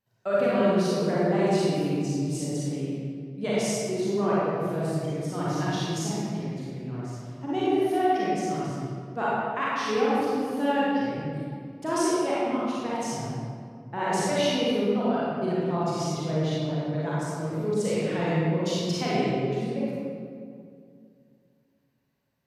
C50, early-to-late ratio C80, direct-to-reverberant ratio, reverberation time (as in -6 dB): -6.0 dB, -2.5 dB, -9.0 dB, 2.3 s